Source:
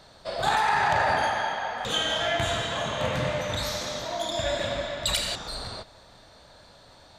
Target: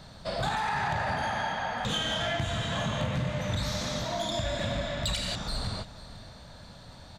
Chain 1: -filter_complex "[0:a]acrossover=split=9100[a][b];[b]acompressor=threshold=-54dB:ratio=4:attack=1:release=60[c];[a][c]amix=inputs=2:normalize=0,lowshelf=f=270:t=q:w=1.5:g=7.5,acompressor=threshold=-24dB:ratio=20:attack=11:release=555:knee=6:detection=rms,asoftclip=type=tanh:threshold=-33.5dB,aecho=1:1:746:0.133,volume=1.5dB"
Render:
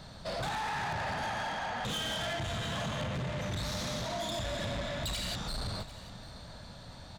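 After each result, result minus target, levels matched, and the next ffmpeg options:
echo 0.251 s late; soft clip: distortion +12 dB
-filter_complex "[0:a]acrossover=split=9100[a][b];[b]acompressor=threshold=-54dB:ratio=4:attack=1:release=60[c];[a][c]amix=inputs=2:normalize=0,lowshelf=f=270:t=q:w=1.5:g=7.5,acompressor=threshold=-24dB:ratio=20:attack=11:release=555:knee=6:detection=rms,asoftclip=type=tanh:threshold=-33.5dB,aecho=1:1:495:0.133,volume=1.5dB"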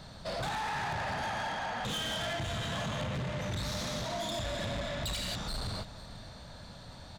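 soft clip: distortion +12 dB
-filter_complex "[0:a]acrossover=split=9100[a][b];[b]acompressor=threshold=-54dB:ratio=4:attack=1:release=60[c];[a][c]amix=inputs=2:normalize=0,lowshelf=f=270:t=q:w=1.5:g=7.5,acompressor=threshold=-24dB:ratio=20:attack=11:release=555:knee=6:detection=rms,asoftclip=type=tanh:threshold=-22.5dB,aecho=1:1:495:0.133,volume=1.5dB"

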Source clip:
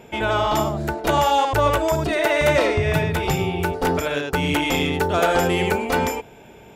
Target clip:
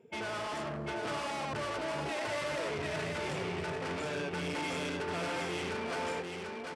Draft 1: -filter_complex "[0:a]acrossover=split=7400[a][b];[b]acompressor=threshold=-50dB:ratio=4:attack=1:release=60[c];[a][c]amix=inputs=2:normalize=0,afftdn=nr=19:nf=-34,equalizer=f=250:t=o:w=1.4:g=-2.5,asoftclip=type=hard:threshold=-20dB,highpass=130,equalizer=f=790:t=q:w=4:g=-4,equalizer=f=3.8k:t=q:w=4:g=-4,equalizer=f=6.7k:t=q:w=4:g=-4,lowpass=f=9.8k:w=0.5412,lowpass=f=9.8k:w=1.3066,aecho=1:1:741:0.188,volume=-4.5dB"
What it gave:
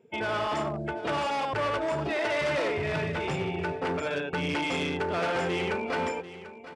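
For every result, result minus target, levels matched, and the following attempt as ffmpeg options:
echo-to-direct -10.5 dB; hard clip: distortion -6 dB
-filter_complex "[0:a]acrossover=split=7400[a][b];[b]acompressor=threshold=-50dB:ratio=4:attack=1:release=60[c];[a][c]amix=inputs=2:normalize=0,afftdn=nr=19:nf=-34,equalizer=f=250:t=o:w=1.4:g=-2.5,asoftclip=type=hard:threshold=-20dB,highpass=130,equalizer=f=790:t=q:w=4:g=-4,equalizer=f=3.8k:t=q:w=4:g=-4,equalizer=f=6.7k:t=q:w=4:g=-4,lowpass=f=9.8k:w=0.5412,lowpass=f=9.8k:w=1.3066,aecho=1:1:741:0.631,volume=-4.5dB"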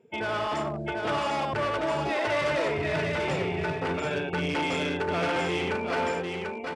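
hard clip: distortion -6 dB
-filter_complex "[0:a]acrossover=split=7400[a][b];[b]acompressor=threshold=-50dB:ratio=4:attack=1:release=60[c];[a][c]amix=inputs=2:normalize=0,afftdn=nr=19:nf=-34,equalizer=f=250:t=o:w=1.4:g=-2.5,asoftclip=type=hard:threshold=-30.5dB,highpass=130,equalizer=f=790:t=q:w=4:g=-4,equalizer=f=3.8k:t=q:w=4:g=-4,equalizer=f=6.7k:t=q:w=4:g=-4,lowpass=f=9.8k:w=0.5412,lowpass=f=9.8k:w=1.3066,aecho=1:1:741:0.631,volume=-4.5dB"

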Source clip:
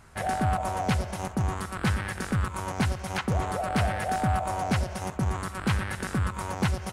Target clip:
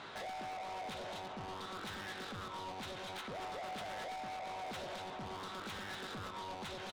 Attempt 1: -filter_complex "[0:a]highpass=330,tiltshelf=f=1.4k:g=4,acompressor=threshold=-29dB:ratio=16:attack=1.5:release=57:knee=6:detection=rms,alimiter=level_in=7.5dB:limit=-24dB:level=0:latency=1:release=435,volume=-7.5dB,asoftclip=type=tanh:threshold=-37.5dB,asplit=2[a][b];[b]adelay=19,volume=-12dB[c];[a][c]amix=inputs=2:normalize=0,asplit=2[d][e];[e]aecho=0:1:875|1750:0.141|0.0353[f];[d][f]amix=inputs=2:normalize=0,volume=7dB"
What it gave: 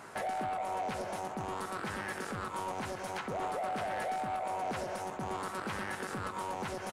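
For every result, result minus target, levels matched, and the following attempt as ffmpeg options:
4000 Hz band -8.5 dB; echo 0.608 s early; soft clip: distortion -9 dB
-filter_complex "[0:a]highpass=330,tiltshelf=f=1.4k:g=4,acompressor=threshold=-29dB:ratio=16:attack=1.5:release=57:knee=6:detection=rms,lowpass=f=3.7k:t=q:w=6.2,alimiter=level_in=7.5dB:limit=-24dB:level=0:latency=1:release=435,volume=-7.5dB,asoftclip=type=tanh:threshold=-37.5dB,asplit=2[a][b];[b]adelay=19,volume=-12dB[c];[a][c]amix=inputs=2:normalize=0,asplit=2[d][e];[e]aecho=0:1:875|1750:0.141|0.0353[f];[d][f]amix=inputs=2:normalize=0,volume=7dB"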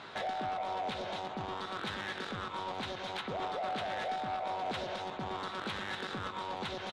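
echo 0.608 s early; soft clip: distortion -9 dB
-filter_complex "[0:a]highpass=330,tiltshelf=f=1.4k:g=4,acompressor=threshold=-29dB:ratio=16:attack=1.5:release=57:knee=6:detection=rms,lowpass=f=3.7k:t=q:w=6.2,alimiter=level_in=7.5dB:limit=-24dB:level=0:latency=1:release=435,volume=-7.5dB,asoftclip=type=tanh:threshold=-37.5dB,asplit=2[a][b];[b]adelay=19,volume=-12dB[c];[a][c]amix=inputs=2:normalize=0,asplit=2[d][e];[e]aecho=0:1:1483|2966:0.141|0.0353[f];[d][f]amix=inputs=2:normalize=0,volume=7dB"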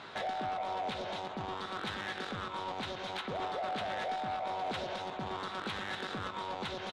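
soft clip: distortion -9 dB
-filter_complex "[0:a]highpass=330,tiltshelf=f=1.4k:g=4,acompressor=threshold=-29dB:ratio=16:attack=1.5:release=57:knee=6:detection=rms,lowpass=f=3.7k:t=q:w=6.2,alimiter=level_in=7.5dB:limit=-24dB:level=0:latency=1:release=435,volume=-7.5dB,asoftclip=type=tanh:threshold=-49dB,asplit=2[a][b];[b]adelay=19,volume=-12dB[c];[a][c]amix=inputs=2:normalize=0,asplit=2[d][e];[e]aecho=0:1:1483|2966:0.141|0.0353[f];[d][f]amix=inputs=2:normalize=0,volume=7dB"

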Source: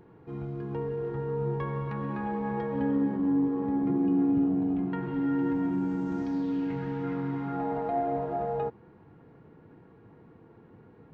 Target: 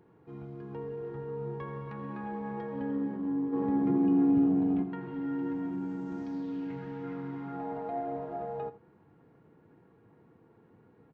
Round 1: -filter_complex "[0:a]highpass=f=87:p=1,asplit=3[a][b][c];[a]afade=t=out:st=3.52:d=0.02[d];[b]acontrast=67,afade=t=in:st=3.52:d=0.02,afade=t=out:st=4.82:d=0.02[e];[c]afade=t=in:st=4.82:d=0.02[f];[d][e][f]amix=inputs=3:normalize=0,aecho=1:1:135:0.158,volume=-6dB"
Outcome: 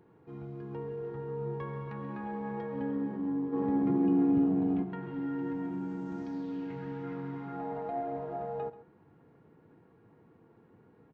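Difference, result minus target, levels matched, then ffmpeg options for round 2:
echo 53 ms late
-filter_complex "[0:a]highpass=f=87:p=1,asplit=3[a][b][c];[a]afade=t=out:st=3.52:d=0.02[d];[b]acontrast=67,afade=t=in:st=3.52:d=0.02,afade=t=out:st=4.82:d=0.02[e];[c]afade=t=in:st=4.82:d=0.02[f];[d][e][f]amix=inputs=3:normalize=0,aecho=1:1:82:0.158,volume=-6dB"

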